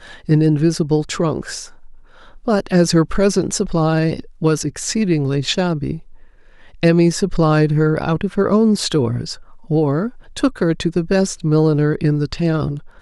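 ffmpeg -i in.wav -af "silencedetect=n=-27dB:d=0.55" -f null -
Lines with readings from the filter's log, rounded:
silence_start: 1.65
silence_end: 2.47 | silence_duration: 0.82
silence_start: 5.98
silence_end: 6.83 | silence_duration: 0.85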